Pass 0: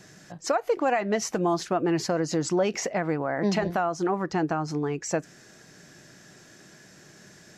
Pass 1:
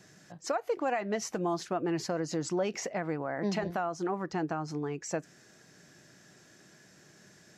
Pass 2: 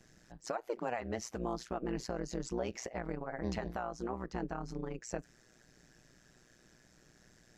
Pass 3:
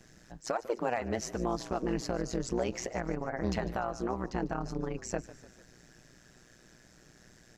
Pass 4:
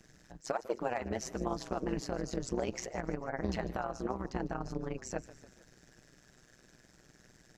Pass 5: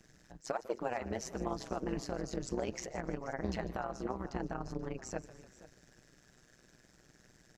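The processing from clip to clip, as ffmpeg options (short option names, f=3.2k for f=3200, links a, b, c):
-af "highpass=52,volume=-6.5dB"
-af "tremolo=f=120:d=0.919,lowshelf=f=73:g=11,volume=-3dB"
-filter_complex "[0:a]asoftclip=type=hard:threshold=-26.5dB,asplit=6[a][b][c][d][e][f];[b]adelay=148,afreqshift=-43,volume=-16.5dB[g];[c]adelay=296,afreqshift=-86,volume=-21.7dB[h];[d]adelay=444,afreqshift=-129,volume=-26.9dB[i];[e]adelay=592,afreqshift=-172,volume=-32.1dB[j];[f]adelay=740,afreqshift=-215,volume=-37.3dB[k];[a][g][h][i][j][k]amix=inputs=6:normalize=0,volume=5dB"
-af "tremolo=f=140:d=0.667"
-af "aecho=1:1:481:0.133,volume=-2dB"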